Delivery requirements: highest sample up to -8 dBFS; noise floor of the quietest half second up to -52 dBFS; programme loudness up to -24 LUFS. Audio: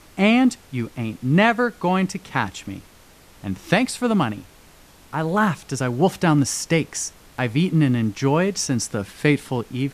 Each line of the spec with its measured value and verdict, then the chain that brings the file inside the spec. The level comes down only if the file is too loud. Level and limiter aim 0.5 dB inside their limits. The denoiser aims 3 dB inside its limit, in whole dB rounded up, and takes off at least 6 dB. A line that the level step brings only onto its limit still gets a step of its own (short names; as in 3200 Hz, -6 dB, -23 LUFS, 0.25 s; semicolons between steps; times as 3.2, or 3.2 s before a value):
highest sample -4.5 dBFS: fail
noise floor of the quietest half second -49 dBFS: fail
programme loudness -21.5 LUFS: fail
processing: denoiser 6 dB, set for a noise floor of -49 dBFS; gain -3 dB; limiter -8.5 dBFS